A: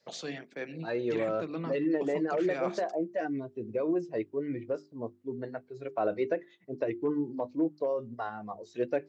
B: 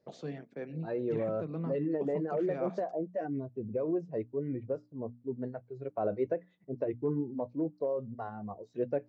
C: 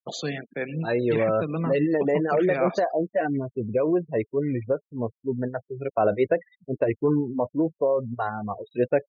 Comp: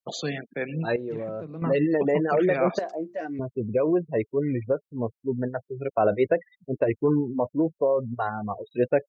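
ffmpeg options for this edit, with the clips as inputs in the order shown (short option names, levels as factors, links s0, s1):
-filter_complex "[2:a]asplit=3[s0][s1][s2];[s0]atrim=end=0.962[s3];[1:a]atrim=start=0.958:end=1.622[s4];[s1]atrim=start=1.618:end=2.792[s5];[0:a]atrim=start=2.788:end=3.392[s6];[s2]atrim=start=3.388[s7];[s3][s4]acrossfade=d=0.004:c1=hsin:c2=hsin[s8];[s8][s5]acrossfade=d=0.004:c1=hsin:c2=hsin[s9];[s9][s6]acrossfade=d=0.004:c1=hsin:c2=hsin[s10];[s10][s7]acrossfade=d=0.004:c1=hsin:c2=hsin"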